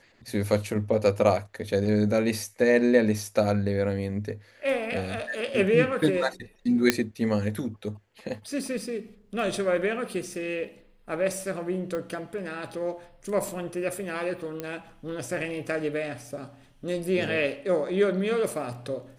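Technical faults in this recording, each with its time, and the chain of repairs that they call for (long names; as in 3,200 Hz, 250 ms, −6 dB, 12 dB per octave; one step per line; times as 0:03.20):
0:06.90: click −4 dBFS
0:11.95: click −20 dBFS
0:14.60: click −18 dBFS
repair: click removal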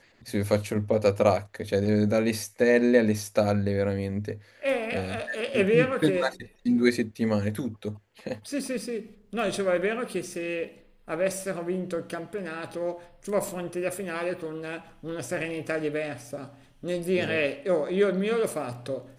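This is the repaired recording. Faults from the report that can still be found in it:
0:11.95: click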